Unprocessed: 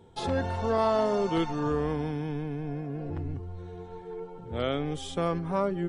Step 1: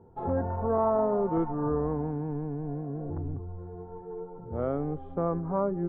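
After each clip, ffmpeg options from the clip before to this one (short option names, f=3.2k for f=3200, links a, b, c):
-af "lowpass=f=1.2k:w=0.5412,lowpass=f=1.2k:w=1.3066"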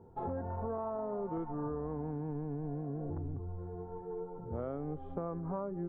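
-af "acompressor=threshold=-33dB:ratio=6,volume=-1.5dB"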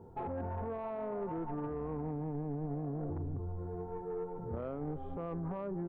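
-af "alimiter=level_in=9dB:limit=-24dB:level=0:latency=1:release=11,volume=-9dB,asoftclip=type=tanh:threshold=-34.5dB,aecho=1:1:301:0.075,volume=3.5dB"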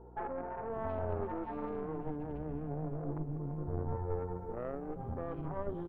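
-filter_complex "[0:a]acrossover=split=260|2200[a][b][c];[a]adelay=570[d];[c]adelay=720[e];[d][b][e]amix=inputs=3:normalize=0,aeval=exprs='0.0422*(cos(1*acos(clip(val(0)/0.0422,-1,1)))-cos(1*PI/2))+0.0188*(cos(2*acos(clip(val(0)/0.0422,-1,1)))-cos(2*PI/2))':c=same,aeval=exprs='val(0)+0.00178*(sin(2*PI*60*n/s)+sin(2*PI*2*60*n/s)/2+sin(2*PI*3*60*n/s)/3+sin(2*PI*4*60*n/s)/4+sin(2*PI*5*60*n/s)/5)':c=same,volume=1dB"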